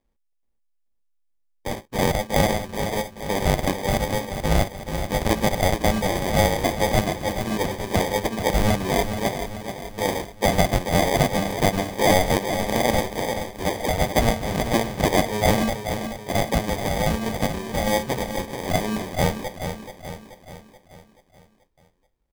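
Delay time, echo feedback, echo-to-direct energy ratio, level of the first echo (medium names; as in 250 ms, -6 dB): 431 ms, 51%, -7.0 dB, -8.5 dB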